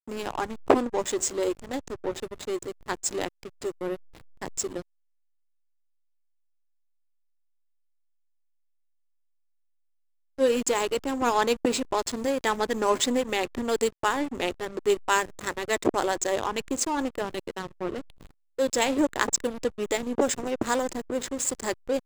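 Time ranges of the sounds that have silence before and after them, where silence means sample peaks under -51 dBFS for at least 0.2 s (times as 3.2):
10.38–18.31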